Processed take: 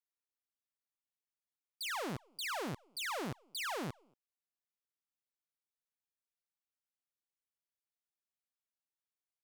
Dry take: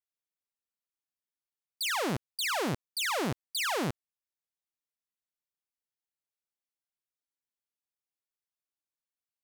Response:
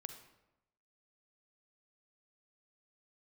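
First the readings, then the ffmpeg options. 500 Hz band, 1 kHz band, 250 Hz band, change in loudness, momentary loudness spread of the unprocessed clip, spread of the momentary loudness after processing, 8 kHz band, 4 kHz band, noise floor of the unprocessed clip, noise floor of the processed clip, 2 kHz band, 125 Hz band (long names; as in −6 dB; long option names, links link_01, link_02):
−8.5 dB, −7.5 dB, −9.0 dB, −8.5 dB, 4 LU, 4 LU, −9.5 dB, −9.0 dB, below −85 dBFS, below −85 dBFS, −8.0 dB, −8.5 dB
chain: -filter_complex "[0:a]equalizer=frequency=1200:width_type=o:width=1.7:gain=2.5,asoftclip=type=tanh:threshold=-24dB,asplit=2[link_01][link_02];[link_02]adelay=230,highpass=300,lowpass=3400,asoftclip=type=hard:threshold=-35.5dB,volume=-22dB[link_03];[link_01][link_03]amix=inputs=2:normalize=0,volume=-8dB"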